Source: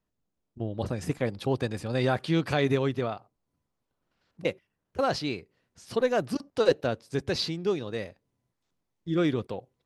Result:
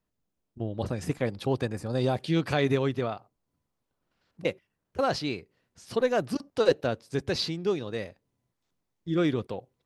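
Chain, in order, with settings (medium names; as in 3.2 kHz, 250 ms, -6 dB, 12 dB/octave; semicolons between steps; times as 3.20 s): 1.64–2.35 s: peaking EQ 4.5 kHz -> 990 Hz -12 dB 0.82 oct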